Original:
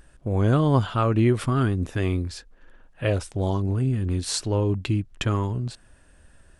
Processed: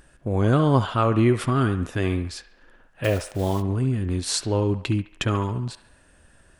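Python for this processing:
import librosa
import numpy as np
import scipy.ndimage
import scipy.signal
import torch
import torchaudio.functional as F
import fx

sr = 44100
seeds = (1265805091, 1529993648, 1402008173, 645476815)

p1 = fx.block_float(x, sr, bits=5, at=(3.03, 3.61), fade=0.02)
p2 = fx.low_shelf(p1, sr, hz=74.0, db=-8.0)
p3 = p2 + fx.echo_wet_bandpass(p2, sr, ms=70, feedback_pct=51, hz=1400.0, wet_db=-9.5, dry=0)
y = F.gain(torch.from_numpy(p3), 2.0).numpy()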